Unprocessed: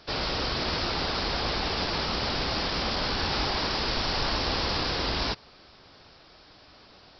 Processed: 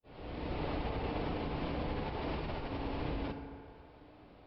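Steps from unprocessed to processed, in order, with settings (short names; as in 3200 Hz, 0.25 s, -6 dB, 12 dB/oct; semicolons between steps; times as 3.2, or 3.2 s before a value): opening faded in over 1.48 s; LPF 2500 Hz 24 dB/oct; bell 1500 Hz -12 dB 1.4 oct; negative-ratio compressor -35 dBFS, ratio -1; plain phase-vocoder stretch 0.62×; FDN reverb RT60 2.5 s, low-frequency decay 0.75×, high-frequency decay 0.4×, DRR 5 dB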